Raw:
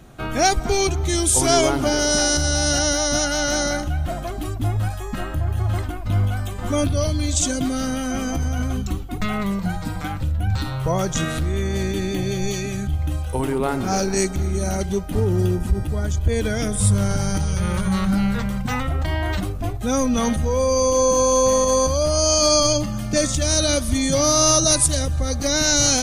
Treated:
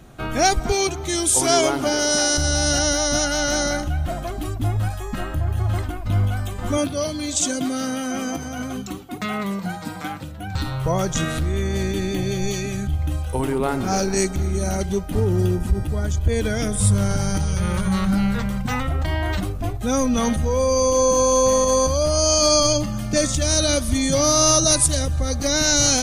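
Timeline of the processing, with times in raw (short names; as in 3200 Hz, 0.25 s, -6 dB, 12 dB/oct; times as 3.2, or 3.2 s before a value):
0.72–2.38 HPF 220 Hz 6 dB/oct
6.77–10.55 HPF 190 Hz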